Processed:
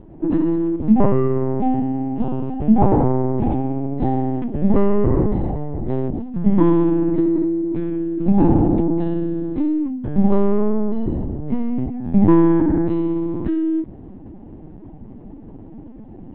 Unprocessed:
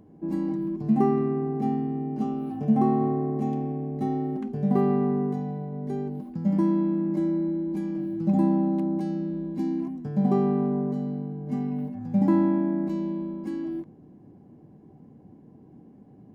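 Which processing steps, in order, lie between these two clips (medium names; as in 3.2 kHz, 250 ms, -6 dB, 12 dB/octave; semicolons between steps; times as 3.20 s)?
gain riding 2 s; LPC vocoder at 8 kHz pitch kept; trim +7.5 dB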